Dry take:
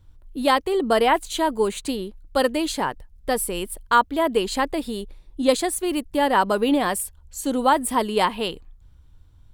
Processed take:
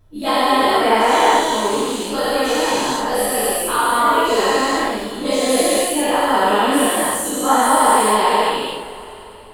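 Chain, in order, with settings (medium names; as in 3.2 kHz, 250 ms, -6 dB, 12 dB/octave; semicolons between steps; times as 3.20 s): every event in the spectrogram widened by 480 ms; two-slope reverb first 0.46 s, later 3.8 s, from -20 dB, DRR -9 dB; trim -13 dB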